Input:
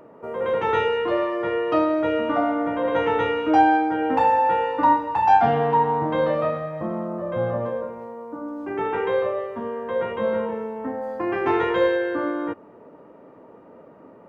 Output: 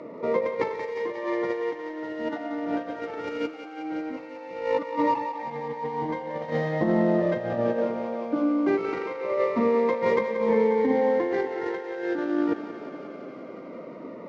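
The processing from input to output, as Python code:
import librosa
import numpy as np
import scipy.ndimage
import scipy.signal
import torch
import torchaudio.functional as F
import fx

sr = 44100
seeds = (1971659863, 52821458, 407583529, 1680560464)

y = scipy.ndimage.median_filter(x, 15, mode='constant')
y = fx.bandpass_edges(y, sr, low_hz=220.0, high_hz=5000.0)
y = fx.low_shelf(y, sr, hz=490.0, db=7.5)
y = fx.over_compress(y, sr, threshold_db=-25.0, ratio=-0.5)
y = fx.peak_eq(y, sr, hz=2100.0, db=13.5, octaves=0.26)
y = fx.echo_thinned(y, sr, ms=180, feedback_pct=82, hz=370.0, wet_db=-9.5)
y = fx.notch_cascade(y, sr, direction='falling', hz=0.21)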